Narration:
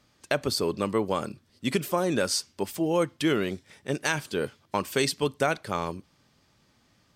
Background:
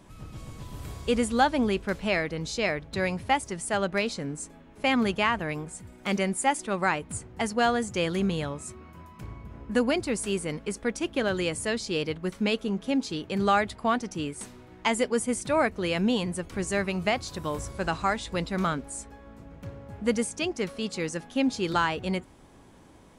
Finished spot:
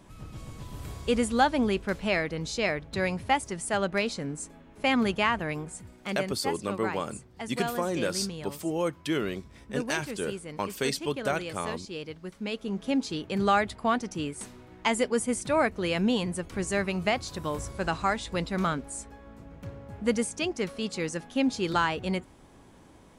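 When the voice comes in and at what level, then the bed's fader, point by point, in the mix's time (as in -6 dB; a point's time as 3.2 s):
5.85 s, -4.0 dB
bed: 5.79 s -0.5 dB
6.34 s -9 dB
12.4 s -9 dB
12.85 s -0.5 dB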